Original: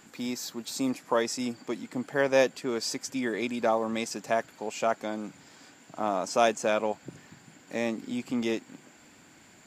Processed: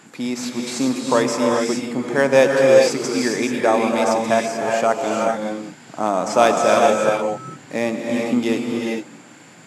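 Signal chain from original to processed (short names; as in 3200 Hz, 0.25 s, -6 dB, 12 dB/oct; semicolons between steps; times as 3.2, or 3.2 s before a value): 6.35–7.12 whine 1300 Hz -39 dBFS; non-linear reverb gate 0.46 s rising, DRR 0 dB; in parallel at -8 dB: sample-rate reducer 7200 Hz, jitter 0%; on the sum: FFT band-pass 100–12000 Hz; gain +5.5 dB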